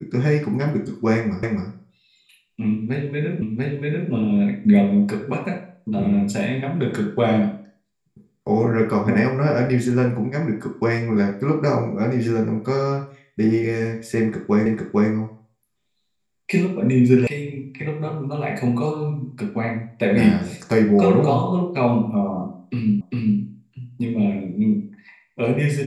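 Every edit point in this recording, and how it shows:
1.43 s: repeat of the last 0.26 s
3.42 s: repeat of the last 0.69 s
14.66 s: repeat of the last 0.45 s
17.27 s: sound stops dead
23.01 s: repeat of the last 0.4 s

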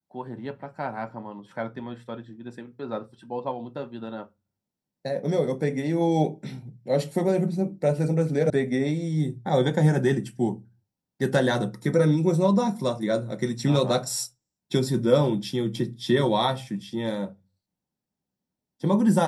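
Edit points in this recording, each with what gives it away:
8.50 s: sound stops dead

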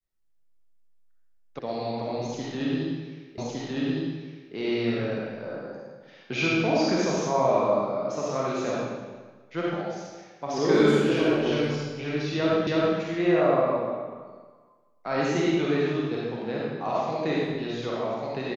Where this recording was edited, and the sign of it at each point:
1.59 s: sound stops dead
3.38 s: repeat of the last 1.16 s
12.67 s: repeat of the last 0.32 s

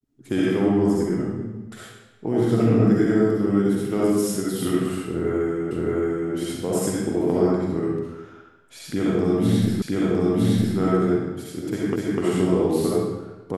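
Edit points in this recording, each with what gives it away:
5.71 s: repeat of the last 0.62 s
9.82 s: repeat of the last 0.96 s
11.96 s: repeat of the last 0.25 s

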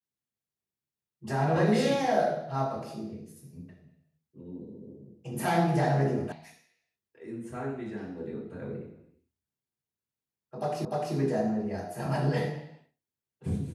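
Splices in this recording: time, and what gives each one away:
6.32 s: sound stops dead
10.85 s: repeat of the last 0.3 s

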